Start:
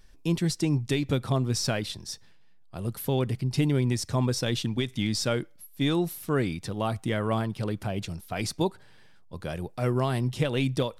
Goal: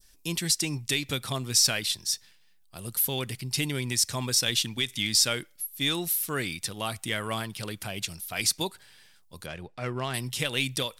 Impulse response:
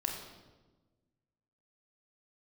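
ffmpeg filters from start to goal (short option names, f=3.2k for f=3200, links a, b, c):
-filter_complex "[0:a]adynamicequalizer=threshold=0.00562:dfrequency=2200:dqfactor=0.75:tfrequency=2200:tqfactor=0.75:attack=5:release=100:ratio=0.375:range=2.5:mode=boostabove:tftype=bell,asettb=1/sr,asplit=3[a][b][c];[a]atrim=end=9.464[d];[b]atrim=start=9.46:end=10.14,asetpts=PTS-STARTPTS,afade=t=in:d=0.004:c=qsin,afade=t=out:st=0.676:d=0.004:c=qsin,adynamicsmooth=sensitivity=1:basefreq=2.9k[e];[c]atrim=start=10.136[f];[d][e]acrossfade=d=0.004:c1=hsin:c2=qsin[g];[g][f]acrossfade=d=0.004:c1=qsin:c2=hsin,crystalizer=i=7.5:c=0,volume=-8dB"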